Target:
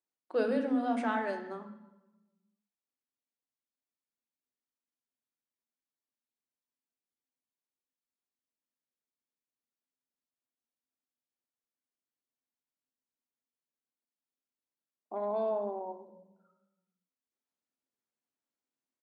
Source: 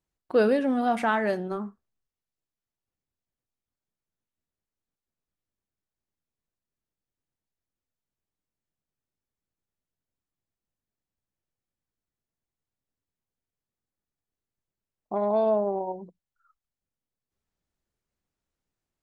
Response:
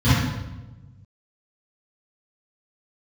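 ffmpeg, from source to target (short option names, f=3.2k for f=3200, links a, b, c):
-filter_complex "[0:a]asplit=2[a][b];[1:a]atrim=start_sample=2205,highshelf=f=6.1k:g=12[c];[b][c]afir=irnorm=-1:irlink=0,volume=-27.5dB[d];[a][d]amix=inputs=2:normalize=0,aresample=22050,aresample=44100,highpass=f=270:w=0.5412,highpass=f=270:w=1.3066,volume=-8.5dB"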